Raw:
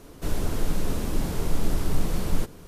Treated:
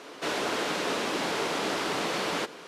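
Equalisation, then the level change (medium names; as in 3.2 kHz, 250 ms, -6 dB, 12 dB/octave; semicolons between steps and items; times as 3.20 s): band-pass 330–3200 Hz; tilt EQ +3 dB/octave; +9.0 dB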